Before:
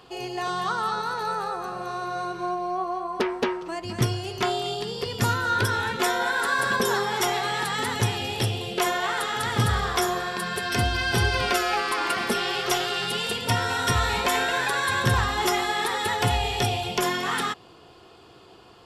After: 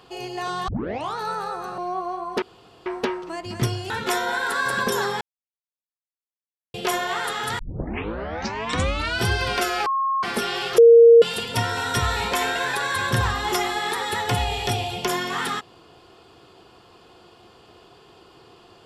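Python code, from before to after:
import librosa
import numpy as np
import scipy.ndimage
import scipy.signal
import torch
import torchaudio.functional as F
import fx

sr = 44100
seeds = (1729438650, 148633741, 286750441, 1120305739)

y = fx.edit(x, sr, fx.tape_start(start_s=0.68, length_s=0.49),
    fx.cut(start_s=1.78, length_s=0.83),
    fx.insert_room_tone(at_s=3.25, length_s=0.44),
    fx.cut(start_s=4.29, length_s=1.54),
    fx.silence(start_s=7.14, length_s=1.53),
    fx.tape_start(start_s=9.52, length_s=1.67),
    fx.bleep(start_s=11.79, length_s=0.37, hz=1080.0, db=-19.5),
    fx.bleep(start_s=12.71, length_s=0.44, hz=465.0, db=-6.5), tone=tone)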